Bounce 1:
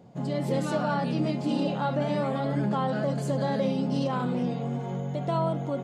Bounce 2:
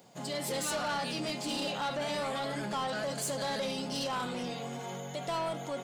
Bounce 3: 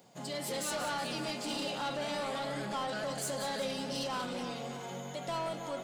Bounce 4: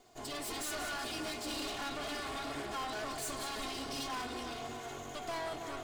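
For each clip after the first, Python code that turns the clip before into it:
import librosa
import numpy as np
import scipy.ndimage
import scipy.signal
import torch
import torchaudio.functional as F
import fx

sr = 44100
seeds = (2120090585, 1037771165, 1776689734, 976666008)

y1 = fx.tilt_eq(x, sr, slope=4.5)
y1 = 10.0 ** (-28.5 / 20.0) * np.tanh(y1 / 10.0 ** (-28.5 / 20.0))
y2 = fx.echo_split(y1, sr, split_hz=1900.0, low_ms=300, high_ms=183, feedback_pct=52, wet_db=-9.5)
y2 = y2 * 10.0 ** (-2.5 / 20.0)
y3 = fx.lower_of_two(y2, sr, delay_ms=2.8)
y3 = np.clip(y3, -10.0 ** (-34.5 / 20.0), 10.0 ** (-34.5 / 20.0))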